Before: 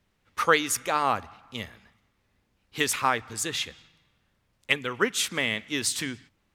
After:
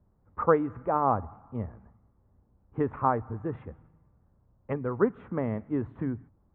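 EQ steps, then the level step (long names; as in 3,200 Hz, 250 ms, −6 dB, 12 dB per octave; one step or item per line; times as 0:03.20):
inverse Chebyshev low-pass filter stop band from 4,700 Hz, stop band 70 dB
parametric band 64 Hz +8.5 dB 2.8 octaves
+1.5 dB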